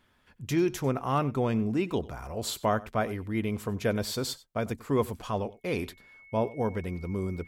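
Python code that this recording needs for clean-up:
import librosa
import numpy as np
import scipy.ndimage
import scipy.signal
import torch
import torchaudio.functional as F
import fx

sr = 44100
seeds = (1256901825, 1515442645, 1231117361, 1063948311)

y = fx.notch(x, sr, hz=2200.0, q=30.0)
y = fx.fix_echo_inverse(y, sr, delay_ms=94, level_db=-20.0)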